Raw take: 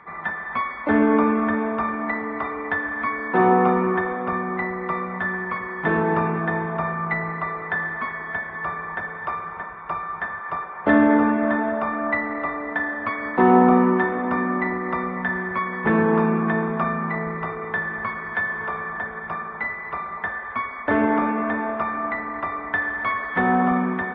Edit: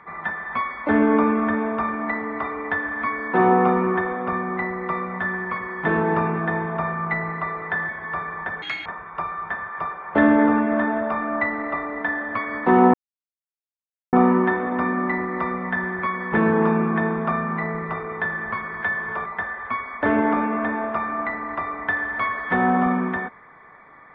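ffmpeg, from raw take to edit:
-filter_complex "[0:a]asplit=6[a][b][c][d][e][f];[a]atrim=end=7.892[g];[b]atrim=start=8.398:end=9.134[h];[c]atrim=start=9.13:end=9.57,asetpts=PTS-STARTPTS,asetrate=81585,aresample=44100[i];[d]atrim=start=9.566:end=13.65,asetpts=PTS-STARTPTS,afade=t=out:st=4.08:d=0.004:c=hsin,apad=pad_dur=1.19[j];[e]atrim=start=13.65:end=18.782,asetpts=PTS-STARTPTS,afade=t=in:d=0.004:c=hsin[k];[f]atrim=start=20.108[l];[g][h]acrossfade=d=0.004:c1=hsin:c2=hsin[m];[m][i]acrossfade=d=0.004:c1=hsin:c2=hsin[n];[j][k]concat=n=2:v=0:a=1[o];[n][o]acrossfade=d=0.004:c1=hsin:c2=hsin[p];[p][l]acrossfade=d=0.004:c1=hsin:c2=hsin"

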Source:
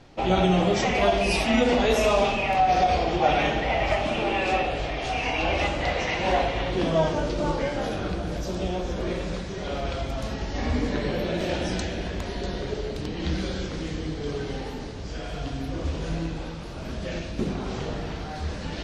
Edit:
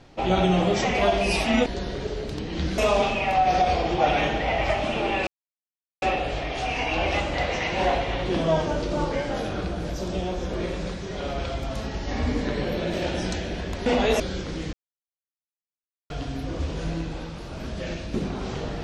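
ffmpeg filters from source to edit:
-filter_complex "[0:a]asplit=8[a][b][c][d][e][f][g][h];[a]atrim=end=1.662[i];[b]atrim=start=12.328:end=13.452[j];[c]atrim=start=1.998:end=4.49,asetpts=PTS-STARTPTS,afade=t=out:st=2.488:d=0.004:c=hsin,apad=pad_dur=0.75[k];[d]atrim=start=4.49:end=12.332,asetpts=PTS-STARTPTS,afade=t=in:d=0.004:c=hsin[l];[e]atrim=start=1.658:end=2.002[m];[f]atrim=start=13.448:end=13.98,asetpts=PTS-STARTPTS,afade=t=out:st=0.528:d=0.004:c=hsin[n];[g]atrim=start=13.98:end=15.35,asetpts=PTS-STARTPTS,volume=0[o];[h]atrim=start=15.35,asetpts=PTS-STARTPTS,afade=t=in:d=0.004:c=hsin[p];[i][j]acrossfade=d=0.004:c1=hsin:c2=hsin[q];[k][l]concat=n=2:v=0:a=1[r];[q][r]acrossfade=d=0.004:c1=hsin:c2=hsin[s];[s][m]acrossfade=d=0.004:c1=hsin:c2=hsin[t];[n][o][p]concat=n=3:v=0:a=1[u];[t][u]acrossfade=d=0.004:c1=hsin:c2=hsin"

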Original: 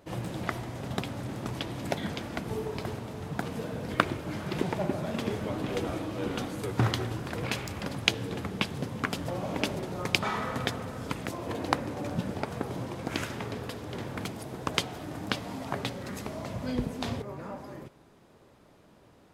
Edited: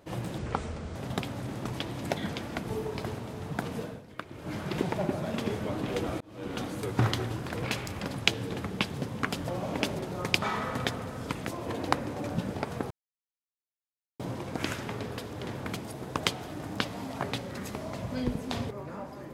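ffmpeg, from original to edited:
-filter_complex "[0:a]asplit=7[a][b][c][d][e][f][g];[a]atrim=end=0.384[h];[b]atrim=start=0.38:end=0.76,asetpts=PTS-STARTPTS,asetrate=29106,aresample=44100[i];[c]atrim=start=0.756:end=3.84,asetpts=PTS-STARTPTS,afade=t=out:st=2.844:d=0.24:silence=0.177828[j];[d]atrim=start=3.84:end=4.1,asetpts=PTS-STARTPTS,volume=-15dB[k];[e]atrim=start=4.1:end=6.01,asetpts=PTS-STARTPTS,afade=t=in:d=0.24:silence=0.177828,afade=t=out:st=1.906:d=0.004:c=hsin[l];[f]atrim=start=6.01:end=12.71,asetpts=PTS-STARTPTS,afade=t=in:d=0.45,afade=t=out:st=6.696:d=0.004:c=hsin,apad=pad_dur=1.29[m];[g]atrim=start=12.71,asetpts=PTS-STARTPTS,afade=t=in:d=0.004:c=hsin[n];[h][i]acrossfade=d=0.004:c1=hsin:c2=hsin[o];[j][k][l][m][n]concat=n=5:v=0:a=1[p];[o][p]acrossfade=d=0.004:c1=hsin:c2=hsin"

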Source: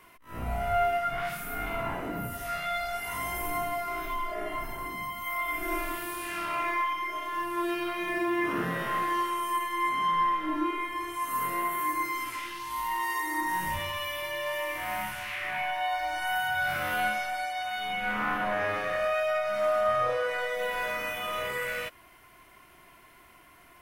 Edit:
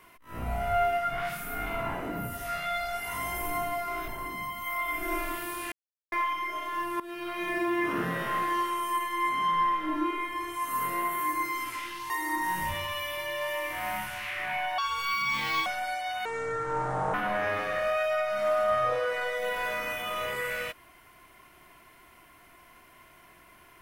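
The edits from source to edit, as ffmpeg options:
-filter_complex "[0:a]asplit=10[a][b][c][d][e][f][g][h][i][j];[a]atrim=end=4.082[k];[b]atrim=start=4.678:end=6.32,asetpts=PTS-STARTPTS,afade=t=out:st=1.638:d=0.004:c=hsin[l];[c]atrim=start=6.32:end=6.72,asetpts=PTS-STARTPTS,volume=0[m];[d]atrim=start=6.72:end=7.6,asetpts=PTS-STARTPTS,afade=t=in:d=0.004:c=hsin,afade=t=out:st=0.876:d=0.004:c=hsin:silence=0.133352[n];[e]atrim=start=7.6:end=12.702,asetpts=PTS-STARTPTS,afade=t=in:d=0.44:silence=0.133352[o];[f]atrim=start=13.148:end=15.834[p];[g]atrim=start=15.83:end=17.17,asetpts=PTS-STARTPTS,asetrate=67032,aresample=44100[q];[h]atrim=start=17.166:end=17.764[r];[i]atrim=start=17.76:end=18.31,asetpts=PTS-STARTPTS,asetrate=27342,aresample=44100[s];[j]atrim=start=18.306[t];[l][m][n][o]concat=n=4:v=0:a=1[u];[k][u]acrossfade=d=0.004:c1=hsin:c2=hsin[v];[v][p]acrossfade=d=0.004:c1=hsin:c2=hsin[w];[w][q]acrossfade=d=0.004:c1=hsin:c2=hsin[x];[x][r]acrossfade=d=0.004:c1=hsin:c2=hsin[y];[y][s]acrossfade=d=0.004:c1=hsin:c2=hsin[z];[z][t]acrossfade=d=0.004:c1=hsin:c2=hsin"

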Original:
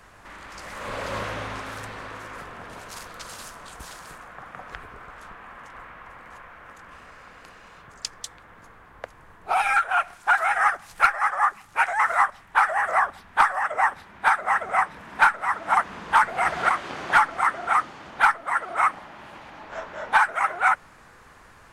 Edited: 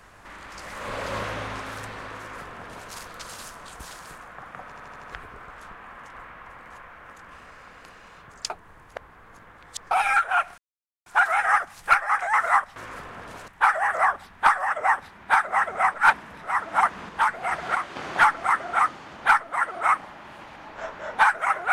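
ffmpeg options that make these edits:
-filter_complex "[0:a]asplit=16[a][b][c][d][e][f][g][h][i][j][k][l][m][n][o][p];[a]atrim=end=4.722[q];[b]atrim=start=4.638:end=4.722[r];[c]atrim=start=4.638:end=4.722[s];[d]atrim=start=4.638:end=4.722[t];[e]atrim=start=4.638:end=4.722[u];[f]atrim=start=4.638:end=8.102[v];[g]atrim=start=8.098:end=9.512,asetpts=PTS-STARTPTS,areverse[w];[h]atrim=start=9.508:end=10.18,asetpts=PTS-STARTPTS,afade=t=out:st=0.668:d=0.004:c=hsin,apad=pad_dur=0.48[x];[i]atrim=start=10.18:end=11.312,asetpts=PTS-STARTPTS,afade=t=in:d=0.004:c=hsin[y];[j]atrim=start=11.848:end=12.422[z];[k]atrim=start=2.178:end=2.902[aa];[l]atrim=start=12.418:end=14.882[ab];[m]atrim=start=14.878:end=15.382,asetpts=PTS-STARTPTS,areverse[ac];[n]atrim=start=15.378:end=16.032[ad];[o]atrim=start=16.028:end=16.902,asetpts=PTS-STARTPTS,volume=-4dB[ae];[p]atrim=start=16.898[af];[q][r]acrossfade=d=0.004:c1=hsin:c2=hsin[ag];[ag][s]acrossfade=d=0.004:c1=hsin:c2=hsin[ah];[ah][t]acrossfade=d=0.004:c1=hsin:c2=hsin[ai];[ai][u]acrossfade=d=0.004:c1=hsin:c2=hsin[aj];[aj][v]acrossfade=d=0.004:c1=hsin:c2=hsin[ak];[ak][w]acrossfade=d=0.004:c1=hsin:c2=hsin[al];[x][y]concat=n=2:v=0:a=1[am];[al][am]acrossfade=d=0.004:c1=hsin:c2=hsin[an];[an][z]acrossfade=d=0.004:c1=hsin:c2=hsin[ao];[ao][aa]acrossfade=d=0.004:c1=hsin:c2=hsin[ap];[ap][ab]acrossfade=d=0.004:c1=hsin:c2=hsin[aq];[aq][ac]acrossfade=d=0.004:c1=hsin:c2=hsin[ar];[ar][ad]acrossfade=d=0.004:c1=hsin:c2=hsin[as];[as][ae]acrossfade=d=0.004:c1=hsin:c2=hsin[at];[at][af]acrossfade=d=0.004:c1=hsin:c2=hsin"

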